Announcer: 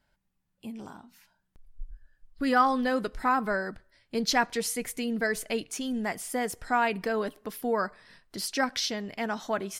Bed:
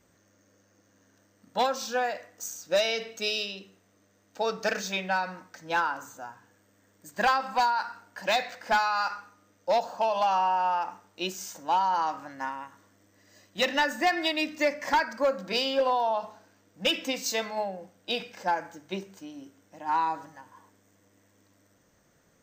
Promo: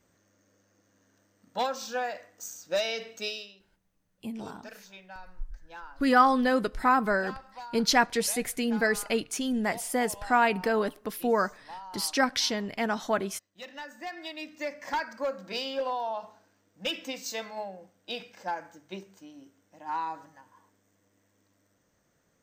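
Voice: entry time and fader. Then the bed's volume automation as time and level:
3.60 s, +2.5 dB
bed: 3.25 s -3.5 dB
3.59 s -18.5 dB
13.58 s -18.5 dB
14.99 s -6 dB

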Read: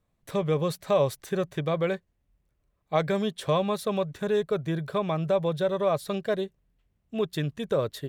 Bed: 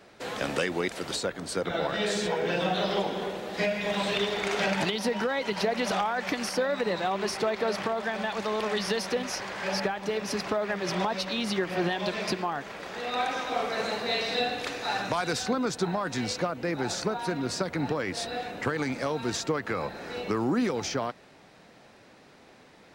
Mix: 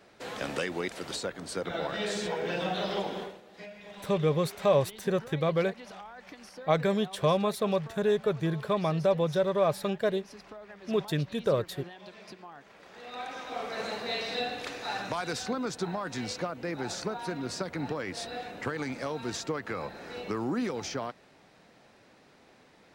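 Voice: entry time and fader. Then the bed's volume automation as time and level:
3.75 s, -0.5 dB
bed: 3.20 s -4 dB
3.43 s -18 dB
12.36 s -18 dB
13.85 s -4.5 dB

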